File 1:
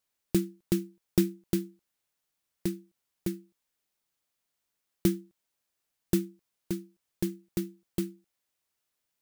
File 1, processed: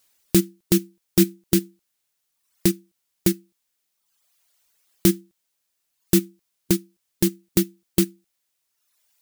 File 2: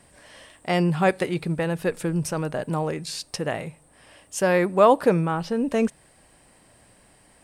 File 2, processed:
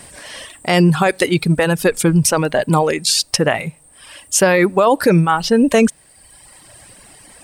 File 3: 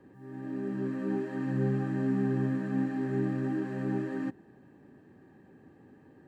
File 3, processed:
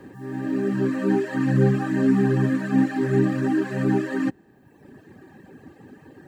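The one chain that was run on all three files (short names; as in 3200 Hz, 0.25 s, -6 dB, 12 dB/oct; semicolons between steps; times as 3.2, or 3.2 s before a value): reverb removal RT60 1.3 s; high shelf 2300 Hz +7 dB; maximiser +15.5 dB; gain -3 dB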